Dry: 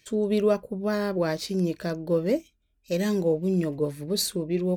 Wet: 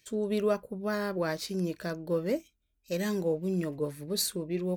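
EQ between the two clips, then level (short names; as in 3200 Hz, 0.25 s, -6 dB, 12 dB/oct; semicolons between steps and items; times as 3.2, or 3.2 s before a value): dynamic EQ 1400 Hz, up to +5 dB, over -44 dBFS, Q 1.1; high shelf 7000 Hz +6.5 dB; -6.0 dB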